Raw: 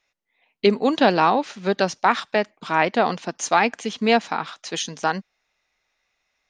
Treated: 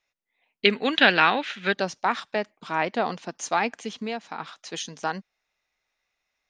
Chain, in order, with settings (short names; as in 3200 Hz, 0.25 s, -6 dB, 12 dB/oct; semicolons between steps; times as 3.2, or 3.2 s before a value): 0.65–1.74 band shelf 2300 Hz +14 dB; 3.97–4.39 compressor 2.5:1, threshold -25 dBFS, peak gain reduction 9.5 dB; gain -6 dB